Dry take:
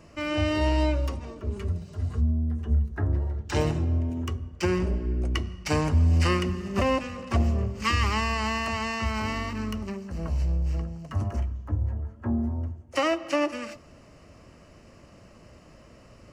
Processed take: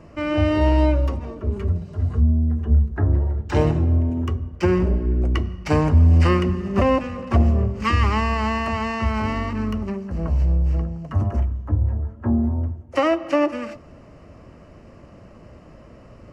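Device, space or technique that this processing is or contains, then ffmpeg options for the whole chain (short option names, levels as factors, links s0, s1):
through cloth: -af "highshelf=f=2700:g=-14,volume=2.24"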